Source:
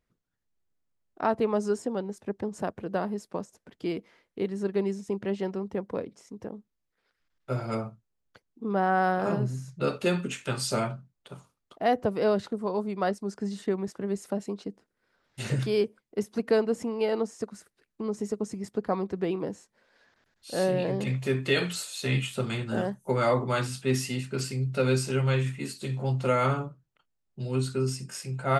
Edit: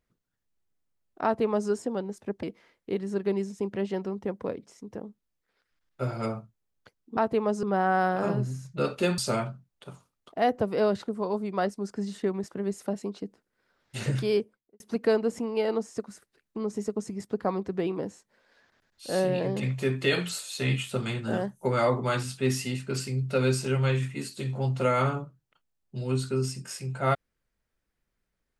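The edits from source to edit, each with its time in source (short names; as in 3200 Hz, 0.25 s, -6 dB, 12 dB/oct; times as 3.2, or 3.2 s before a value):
1.24–1.7 copy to 8.66
2.43–3.92 cut
10.21–10.62 cut
15.77–16.24 studio fade out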